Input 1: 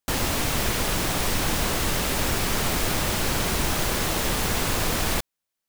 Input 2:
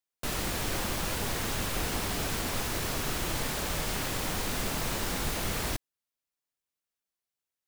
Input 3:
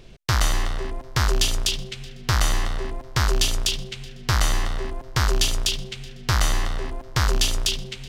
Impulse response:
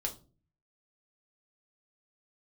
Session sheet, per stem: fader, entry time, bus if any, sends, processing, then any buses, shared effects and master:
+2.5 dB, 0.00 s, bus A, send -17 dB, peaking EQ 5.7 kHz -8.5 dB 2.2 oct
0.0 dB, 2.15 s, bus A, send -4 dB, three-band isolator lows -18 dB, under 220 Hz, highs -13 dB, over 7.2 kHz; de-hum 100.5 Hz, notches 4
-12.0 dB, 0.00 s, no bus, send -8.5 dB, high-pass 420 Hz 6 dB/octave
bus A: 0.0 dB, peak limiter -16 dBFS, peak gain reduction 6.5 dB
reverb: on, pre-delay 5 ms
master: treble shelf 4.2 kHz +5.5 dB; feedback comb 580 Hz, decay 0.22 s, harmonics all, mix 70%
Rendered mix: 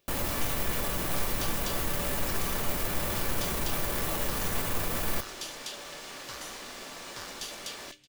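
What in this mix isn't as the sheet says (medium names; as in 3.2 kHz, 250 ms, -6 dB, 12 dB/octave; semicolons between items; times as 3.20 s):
stem 1 +2.5 dB -> +13.0 dB; stem 2: send off; reverb return -9.5 dB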